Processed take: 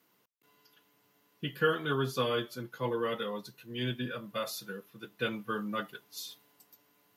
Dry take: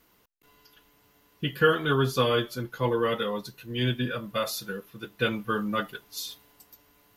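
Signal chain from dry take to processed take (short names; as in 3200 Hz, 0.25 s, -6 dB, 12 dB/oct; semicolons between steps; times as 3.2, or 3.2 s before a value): HPF 120 Hz 24 dB/oct; gain -6.5 dB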